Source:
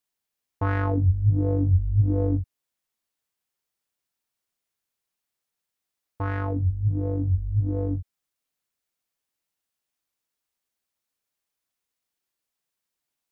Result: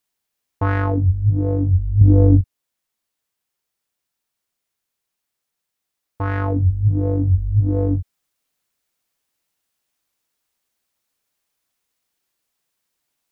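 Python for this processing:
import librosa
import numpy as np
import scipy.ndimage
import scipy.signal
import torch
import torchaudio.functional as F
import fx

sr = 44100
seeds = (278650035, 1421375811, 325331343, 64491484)

y = fx.rider(x, sr, range_db=10, speed_s=0.5)
y = fx.low_shelf(y, sr, hz=410.0, db=9.0, at=(2.01, 2.41))
y = y * 10.0 ** (6.0 / 20.0)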